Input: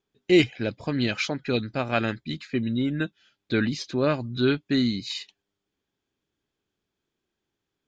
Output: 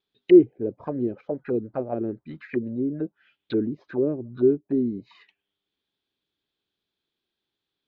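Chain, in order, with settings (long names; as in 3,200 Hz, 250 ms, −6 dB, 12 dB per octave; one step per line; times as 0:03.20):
low-shelf EQ 160 Hz −5 dB
envelope-controlled low-pass 380–3,900 Hz down, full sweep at −23 dBFS
level −4.5 dB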